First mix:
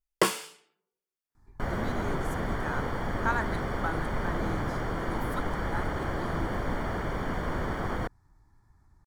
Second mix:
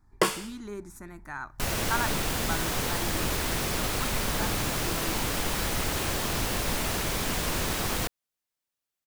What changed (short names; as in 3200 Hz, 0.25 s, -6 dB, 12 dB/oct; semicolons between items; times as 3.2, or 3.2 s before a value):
speech: entry -1.35 s; second sound: remove polynomial smoothing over 41 samples